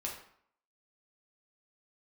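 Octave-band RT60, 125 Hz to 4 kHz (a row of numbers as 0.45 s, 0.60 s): 0.55 s, 0.60 s, 0.60 s, 0.65 s, 0.55 s, 0.45 s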